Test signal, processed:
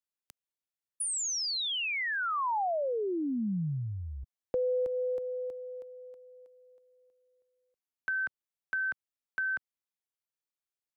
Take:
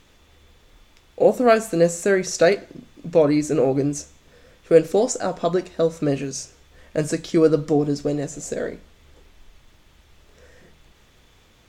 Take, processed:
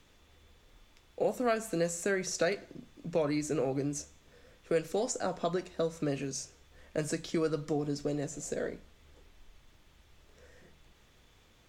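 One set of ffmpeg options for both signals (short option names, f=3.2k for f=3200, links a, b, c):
-filter_complex "[0:a]acrossover=split=140|870[a][b][c];[a]acompressor=threshold=-35dB:ratio=4[d];[b]acompressor=threshold=-23dB:ratio=4[e];[c]acompressor=threshold=-24dB:ratio=4[f];[d][e][f]amix=inputs=3:normalize=0,volume=-7.5dB"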